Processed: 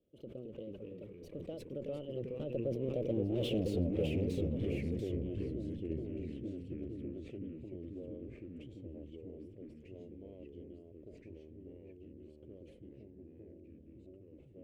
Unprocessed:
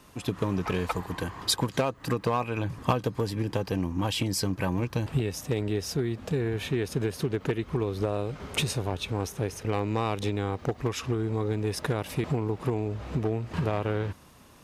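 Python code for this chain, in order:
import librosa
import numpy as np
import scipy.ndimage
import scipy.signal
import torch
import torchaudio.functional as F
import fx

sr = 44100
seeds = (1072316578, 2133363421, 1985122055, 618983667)

y = fx.doppler_pass(x, sr, speed_mps=58, closest_m=9.5, pass_at_s=3.52)
y = fx.peak_eq(y, sr, hz=750.0, db=-6.0, octaves=0.31)
y = fx.echo_feedback(y, sr, ms=1158, feedback_pct=28, wet_db=-22.5)
y = fx.tube_stage(y, sr, drive_db=40.0, bias=0.75)
y = fx.curve_eq(y, sr, hz=(170.0, 560.0, 970.0, 1800.0, 2900.0, 4700.0), db=(0, 9, -23, -23, -5, -21))
y = fx.echo_pitch(y, sr, ms=190, semitones=-2, count=2, db_per_echo=-3.0)
y = fx.sustainer(y, sr, db_per_s=59.0)
y = y * librosa.db_to_amplitude(6.0)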